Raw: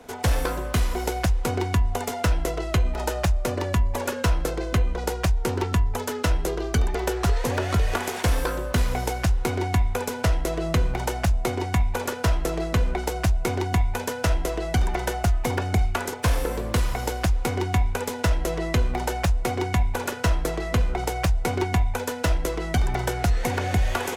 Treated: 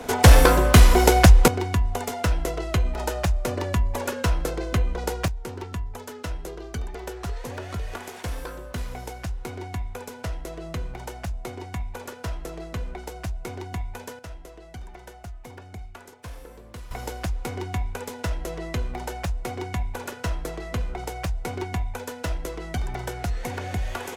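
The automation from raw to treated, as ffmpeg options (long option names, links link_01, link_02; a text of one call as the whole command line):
ffmpeg -i in.wav -af "asetnsamples=nb_out_samples=441:pad=0,asendcmd='1.48 volume volume -1dB;5.28 volume volume -9.5dB;14.19 volume volume -17.5dB;16.91 volume volume -6dB',volume=10.5dB" out.wav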